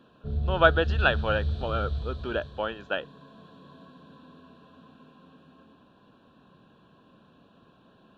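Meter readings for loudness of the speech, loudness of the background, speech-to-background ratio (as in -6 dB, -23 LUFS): -27.5 LUFS, -32.0 LUFS, 4.5 dB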